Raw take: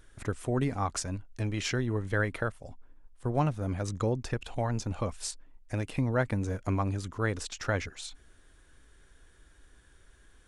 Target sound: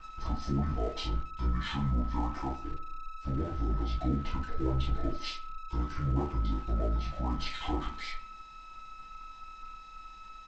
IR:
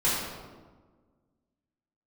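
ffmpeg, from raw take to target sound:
-filter_complex "[0:a]alimiter=level_in=2dB:limit=-24dB:level=0:latency=1:release=145,volume=-2dB,asetrate=24750,aresample=44100,atempo=1.7818,acontrast=27,aeval=exprs='val(0)+0.0141*sin(2*PI*1300*n/s)':channel_layout=same[link_01];[1:a]atrim=start_sample=2205,atrim=end_sample=6174,asetrate=88200,aresample=44100[link_02];[link_01][link_02]afir=irnorm=-1:irlink=0,aresample=16000,aeval=exprs='sgn(val(0))*max(abs(val(0))-0.00944,0)':channel_layout=same,aresample=44100,asplit=2[link_03][link_04];[link_04]adelay=77,lowpass=frequency=2600:poles=1,volume=-13.5dB,asplit=2[link_05][link_06];[link_06]adelay=77,lowpass=frequency=2600:poles=1,volume=0.42,asplit=2[link_07][link_08];[link_08]adelay=77,lowpass=frequency=2600:poles=1,volume=0.42,asplit=2[link_09][link_10];[link_10]adelay=77,lowpass=frequency=2600:poles=1,volume=0.42[link_11];[link_03][link_05][link_07][link_09][link_11]amix=inputs=5:normalize=0,volume=-8dB"

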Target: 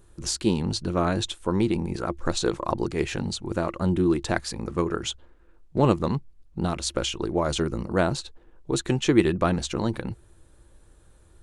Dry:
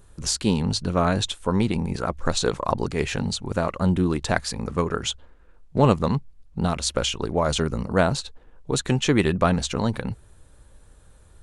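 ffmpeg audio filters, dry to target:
ffmpeg -i in.wav -af "equalizer=frequency=340:width_type=o:width=0.2:gain=12,volume=-3.5dB" out.wav

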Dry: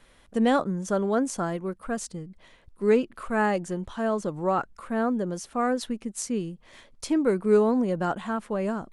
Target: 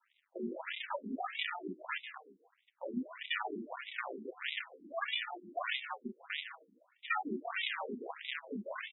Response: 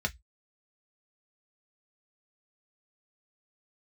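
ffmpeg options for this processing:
-filter_complex "[0:a]flanger=delay=5.6:depth=7.6:regen=-61:speed=0.38:shape=sinusoidal,agate=range=-10dB:threshold=-51dB:ratio=16:detection=peak,highpass=frequency=110:poles=1,aecho=1:1:3.3:0.75,aresample=8000,acrusher=samples=21:mix=1:aa=0.000001:lfo=1:lforange=12.6:lforate=0.52,aresample=44100,tiltshelf=frequency=1300:gain=-6.5,acompressor=threshold=-40dB:ratio=3,asplit=2[link_01][link_02];[1:a]atrim=start_sample=2205,adelay=145[link_03];[link_02][link_03]afir=irnorm=-1:irlink=0,volume=-16.5dB[link_04];[link_01][link_04]amix=inputs=2:normalize=0,afftfilt=real='re*between(b*sr/1024,290*pow(2800/290,0.5+0.5*sin(2*PI*1.6*pts/sr))/1.41,290*pow(2800/290,0.5+0.5*sin(2*PI*1.6*pts/sr))*1.41)':imag='im*between(b*sr/1024,290*pow(2800/290,0.5+0.5*sin(2*PI*1.6*pts/sr))/1.41,290*pow(2800/290,0.5+0.5*sin(2*PI*1.6*pts/sr))*1.41)':win_size=1024:overlap=0.75,volume=12.5dB"

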